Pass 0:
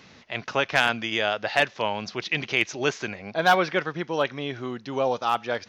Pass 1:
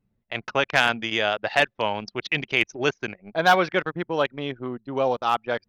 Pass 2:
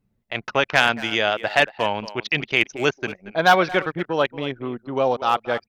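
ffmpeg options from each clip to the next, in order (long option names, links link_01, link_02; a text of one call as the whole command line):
ffmpeg -i in.wav -af "anlmdn=25.1,volume=1.5dB" out.wav
ffmpeg -i in.wav -filter_complex "[0:a]asplit=2[link_01][link_02];[link_02]adelay=230,highpass=300,lowpass=3400,asoftclip=type=hard:threshold=-14.5dB,volume=-15dB[link_03];[link_01][link_03]amix=inputs=2:normalize=0,volume=2.5dB" out.wav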